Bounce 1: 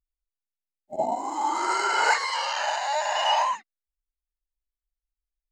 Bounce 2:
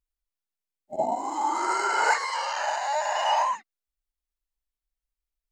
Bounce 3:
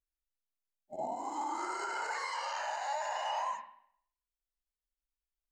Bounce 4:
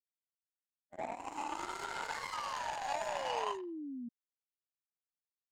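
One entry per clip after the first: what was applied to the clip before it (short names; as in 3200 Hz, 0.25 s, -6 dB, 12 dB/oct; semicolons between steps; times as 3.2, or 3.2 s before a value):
dynamic EQ 3400 Hz, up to -7 dB, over -41 dBFS, Q 1.3
limiter -20 dBFS, peak gain reduction 10 dB; reverb, pre-delay 33 ms, DRR 6.5 dB; gain -8.5 dB
power-law curve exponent 2; painted sound fall, 2.32–4.09, 230–1300 Hz -46 dBFS; gain +3.5 dB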